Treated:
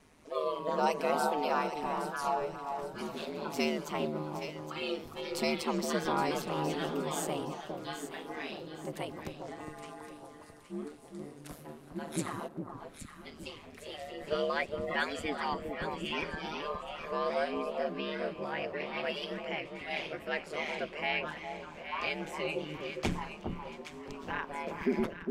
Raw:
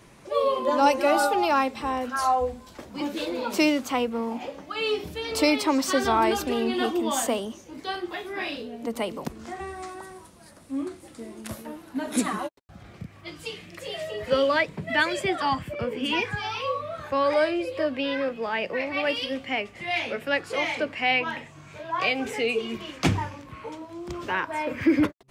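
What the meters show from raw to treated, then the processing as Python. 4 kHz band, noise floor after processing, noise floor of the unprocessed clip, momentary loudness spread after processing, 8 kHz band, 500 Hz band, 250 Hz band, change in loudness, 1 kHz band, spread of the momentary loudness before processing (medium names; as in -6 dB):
-9.5 dB, -51 dBFS, -50 dBFS, 14 LU, -9.5 dB, -8.0 dB, -10.0 dB, -9.5 dB, -8.5 dB, 16 LU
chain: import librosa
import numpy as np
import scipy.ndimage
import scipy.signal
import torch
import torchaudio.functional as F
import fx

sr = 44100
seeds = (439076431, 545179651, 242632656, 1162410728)

y = x * np.sin(2.0 * np.pi * 76.0 * np.arange(len(x)) / sr)
y = fx.echo_alternate(y, sr, ms=409, hz=1200.0, feedback_pct=59, wet_db=-5.0)
y = y * 10.0 ** (-7.0 / 20.0)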